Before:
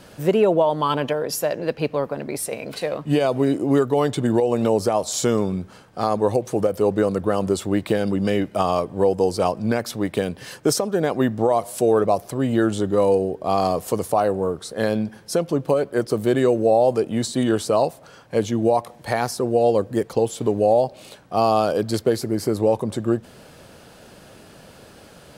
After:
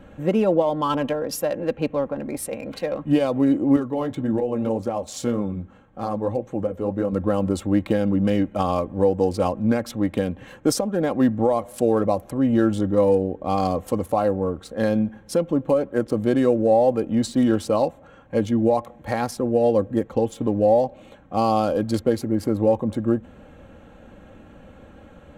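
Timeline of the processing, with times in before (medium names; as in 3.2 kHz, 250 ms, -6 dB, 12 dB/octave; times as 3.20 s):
3.76–7.13 s: flange 1.8 Hz, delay 5 ms, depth 7.1 ms, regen -56%
whole clip: local Wiener filter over 9 samples; bass shelf 170 Hz +11 dB; comb 3.7 ms, depth 54%; trim -3.5 dB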